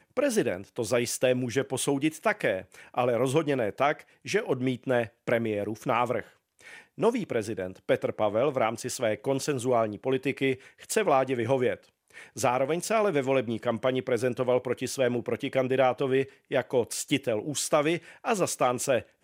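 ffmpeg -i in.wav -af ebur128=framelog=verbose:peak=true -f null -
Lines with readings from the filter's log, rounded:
Integrated loudness:
  I:         -27.8 LUFS
  Threshold: -38.0 LUFS
Loudness range:
  LRA:         2.1 LU
  Threshold: -48.1 LUFS
  LRA low:   -29.4 LUFS
  LRA high:  -27.3 LUFS
True peak:
  Peak:       -9.8 dBFS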